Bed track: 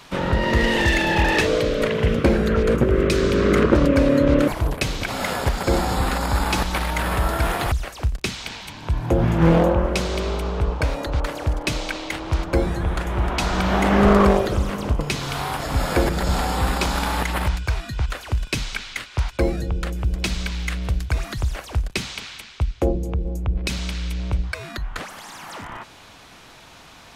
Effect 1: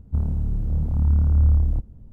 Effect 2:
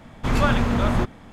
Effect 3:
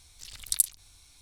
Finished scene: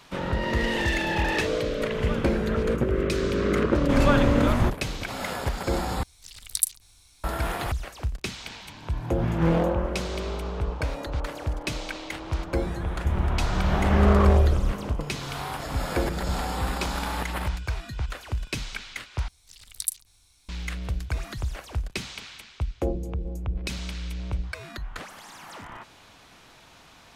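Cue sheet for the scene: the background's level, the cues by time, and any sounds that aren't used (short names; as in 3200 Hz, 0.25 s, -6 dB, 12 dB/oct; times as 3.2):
bed track -6.5 dB
1.67 add 2 -15 dB + vibrato 5 Hz 36 cents
3.65 add 2 -2 dB
6.03 replace with 3
12.92 add 1 -3 dB
19.28 replace with 3 -4.5 dB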